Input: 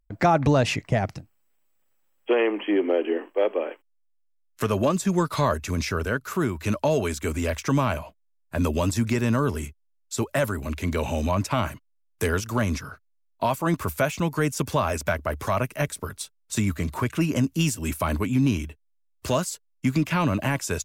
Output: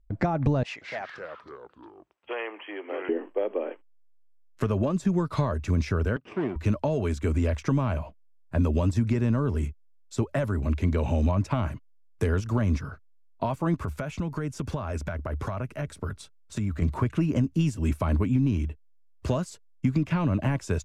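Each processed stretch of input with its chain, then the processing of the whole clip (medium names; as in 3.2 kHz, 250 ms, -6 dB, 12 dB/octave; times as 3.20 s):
0.63–3.09 s: high-pass 990 Hz + treble shelf 6.9 kHz -7.5 dB + ever faster or slower copies 184 ms, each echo -4 st, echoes 3, each echo -6 dB
6.16–6.56 s: comb filter that takes the minimum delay 0.36 ms + band-pass 290–2900 Hz
13.82–16.82 s: peaking EQ 1.4 kHz +4 dB 0.23 oct + compression, threshold -28 dBFS
whole clip: compression, threshold -23 dBFS; Bessel low-pass 8.8 kHz, order 2; tilt EQ -2.5 dB/octave; trim -2.5 dB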